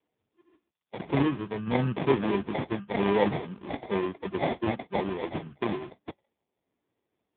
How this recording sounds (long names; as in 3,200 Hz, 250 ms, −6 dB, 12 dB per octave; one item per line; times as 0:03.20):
aliases and images of a low sample rate 1,400 Hz, jitter 0%
sample-and-hold tremolo 3 Hz
AMR narrowband